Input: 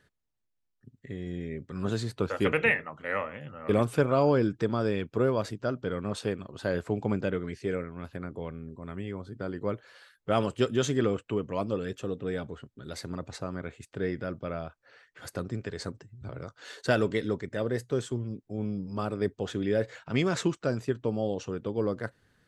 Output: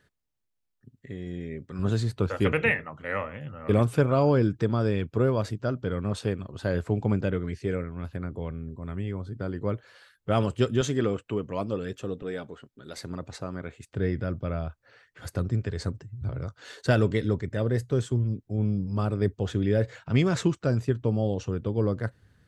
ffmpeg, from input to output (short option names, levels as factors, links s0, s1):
-af "asetnsamples=n=441:p=0,asendcmd='1.79 equalizer g 9.5;10.81 equalizer g 2.5;12.22 equalizer g -8.5;12.97 equalizer g 2;13.89 equalizer g 13',equalizer=f=78:t=o:w=2:g=1"